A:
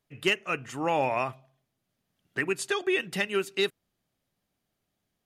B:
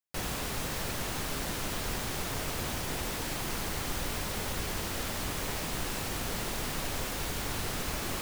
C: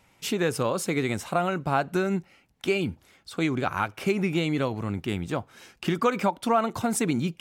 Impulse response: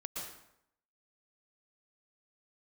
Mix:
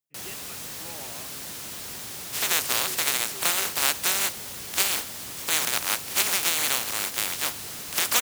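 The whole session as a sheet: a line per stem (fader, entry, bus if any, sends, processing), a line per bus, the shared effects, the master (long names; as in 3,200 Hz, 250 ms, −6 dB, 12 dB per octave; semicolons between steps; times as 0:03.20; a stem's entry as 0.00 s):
−19.5 dB, 0.00 s, no send, no processing
−8.5 dB, 0.00 s, no send, high-shelf EQ 3,000 Hz +12 dB
+1.5 dB, 2.10 s, no send, compressing power law on the bin magnitudes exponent 0.15; high-pass filter 640 Hz 6 dB per octave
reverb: not used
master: high-pass filter 92 Hz 12 dB per octave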